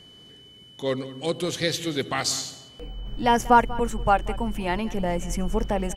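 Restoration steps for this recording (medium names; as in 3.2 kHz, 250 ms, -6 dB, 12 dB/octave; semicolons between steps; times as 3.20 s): band-stop 3 kHz, Q 30; inverse comb 190 ms -18 dB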